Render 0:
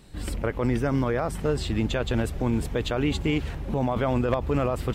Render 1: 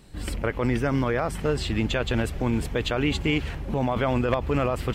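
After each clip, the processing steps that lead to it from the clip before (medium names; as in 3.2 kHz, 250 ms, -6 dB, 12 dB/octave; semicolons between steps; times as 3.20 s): band-stop 3.7 kHz, Q 25; dynamic bell 2.5 kHz, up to +5 dB, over -46 dBFS, Q 0.72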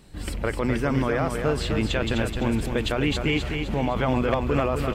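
hum notches 60/120 Hz; on a send: feedback delay 256 ms, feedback 42%, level -6 dB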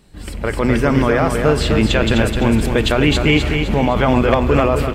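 level rider gain up to 11.5 dB; on a send at -13 dB: reverberation RT60 1.4 s, pre-delay 5 ms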